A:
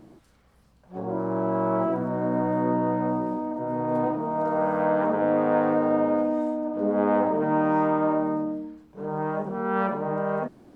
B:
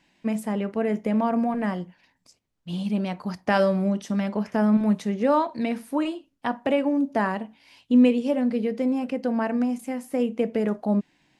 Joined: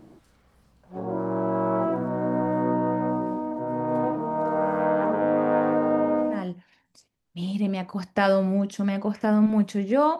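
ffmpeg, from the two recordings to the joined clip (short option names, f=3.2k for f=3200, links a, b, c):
-filter_complex "[0:a]apad=whole_dur=10.19,atrim=end=10.19,atrim=end=6.47,asetpts=PTS-STARTPTS[a];[1:a]atrim=start=1.58:end=5.5,asetpts=PTS-STARTPTS[b];[a][b]acrossfade=d=0.2:c1=tri:c2=tri"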